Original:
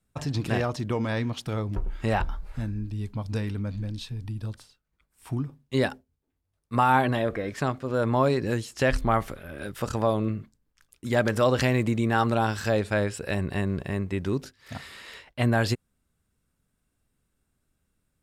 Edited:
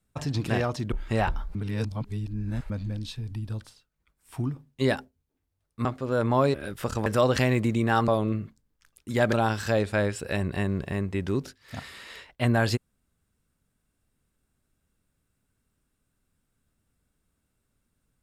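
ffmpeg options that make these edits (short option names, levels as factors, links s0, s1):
-filter_complex "[0:a]asplit=9[s0][s1][s2][s3][s4][s5][s6][s7][s8];[s0]atrim=end=0.922[s9];[s1]atrim=start=1.848:end=2.482[s10];[s2]atrim=start=2.478:end=3.632,asetpts=PTS-STARTPTS,areverse[s11];[s3]atrim=start=3.628:end=6.782[s12];[s4]atrim=start=7.668:end=8.362[s13];[s5]atrim=start=9.518:end=10.042[s14];[s6]atrim=start=11.288:end=12.312[s15];[s7]atrim=start=10.038:end=11.292[s16];[s8]atrim=start=12.308[s17];[s9][s10]acrossfade=d=0.004:c1=hsin:c2=hsin[s18];[s18][s11]acrossfade=d=0.004:c1=hsin:c2=hsin[s19];[s19][s12]acrossfade=d=0.004:c1=hsin:c2=hsin[s20];[s20][s13]acrossfade=d=0.004:c1=hsin:c2=hsin[s21];[s21][s14]acrossfade=d=0.004:c1=hsin:c2=hsin[s22];[s22][s15]acrossfade=d=0.004:c1=hsin:c2=hsin[s23];[s23][s16]acrossfade=d=0.004:c1=hsin:c2=hsin[s24];[s24][s17]acrossfade=d=0.004:c1=hsin:c2=hsin"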